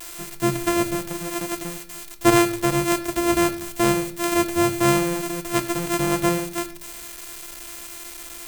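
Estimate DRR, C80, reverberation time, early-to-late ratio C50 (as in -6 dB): 4.5 dB, 15.5 dB, no single decay rate, 14.0 dB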